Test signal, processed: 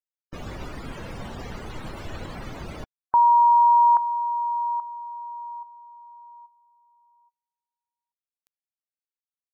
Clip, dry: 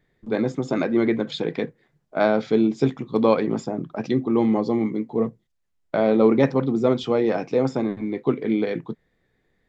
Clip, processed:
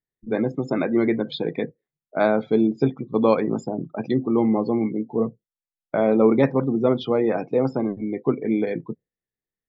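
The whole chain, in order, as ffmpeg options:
ffmpeg -i in.wav -af "afftdn=noise_reduction=27:noise_floor=-37" out.wav

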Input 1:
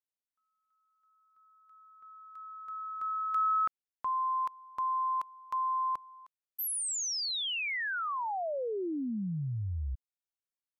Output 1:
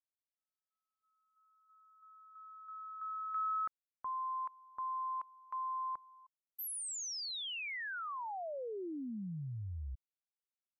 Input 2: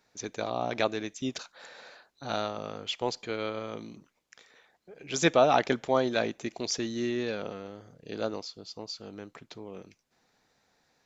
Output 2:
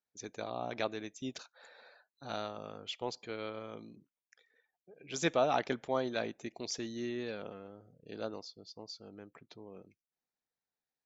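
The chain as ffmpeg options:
ffmpeg -i in.wav -af "afftdn=noise_reduction=20:noise_floor=-54,volume=-7.5dB" out.wav

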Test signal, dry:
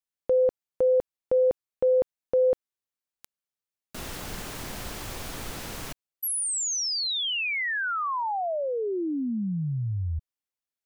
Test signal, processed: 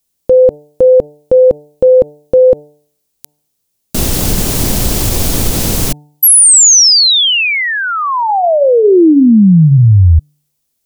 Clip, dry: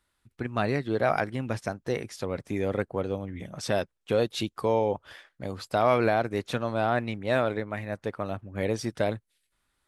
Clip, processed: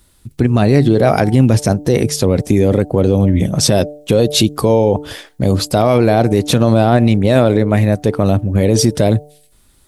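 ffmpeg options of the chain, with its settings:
ffmpeg -i in.wav -af "equalizer=frequency=1500:width=0.47:gain=-14,bandreject=frequency=148:width_type=h:width=4,bandreject=frequency=296:width_type=h:width=4,bandreject=frequency=444:width_type=h:width=4,bandreject=frequency=592:width_type=h:width=4,bandreject=frequency=740:width_type=h:width=4,bandreject=frequency=888:width_type=h:width=4,alimiter=level_in=27.5dB:limit=-1dB:release=50:level=0:latency=1,volume=-1dB" out.wav

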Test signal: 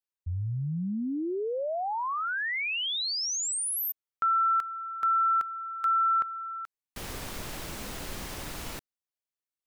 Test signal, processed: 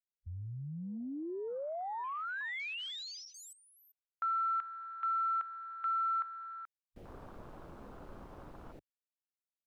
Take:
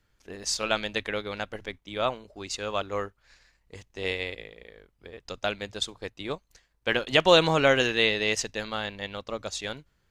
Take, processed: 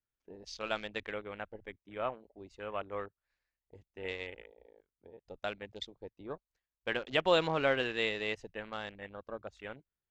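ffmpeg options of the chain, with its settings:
ffmpeg -i in.wav -af "bass=frequency=250:gain=-3,treble=frequency=4000:gain=-10,afwtdn=0.01,volume=-8dB" out.wav

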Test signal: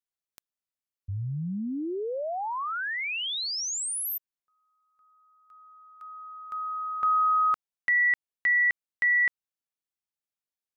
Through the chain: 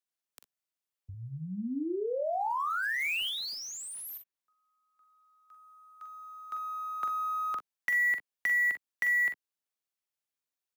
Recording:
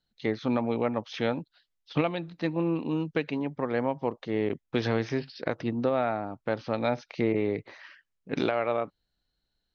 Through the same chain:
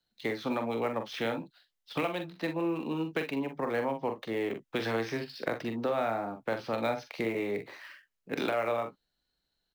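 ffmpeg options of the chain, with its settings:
ffmpeg -i in.wav -filter_complex "[0:a]lowshelf=frequency=170:gain=-8,acrossover=split=210|700|3100[link_01][link_02][link_03][link_04];[link_01]acompressor=threshold=-43dB:ratio=4[link_05];[link_02]acompressor=threshold=-32dB:ratio=4[link_06];[link_03]acompressor=threshold=-31dB:ratio=4[link_07];[link_04]acompressor=threshold=-45dB:ratio=4[link_08];[link_05][link_06][link_07][link_08]amix=inputs=4:normalize=0,acrossover=split=250|1700[link_09][link_10][link_11];[link_11]acrusher=bits=3:mode=log:mix=0:aa=0.000001[link_12];[link_09][link_10][link_12]amix=inputs=3:normalize=0,aecho=1:1:44|59:0.422|0.188" out.wav

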